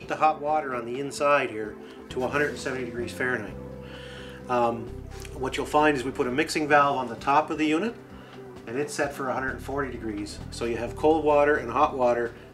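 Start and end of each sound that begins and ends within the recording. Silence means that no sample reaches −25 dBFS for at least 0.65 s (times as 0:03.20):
0:04.50–0:07.89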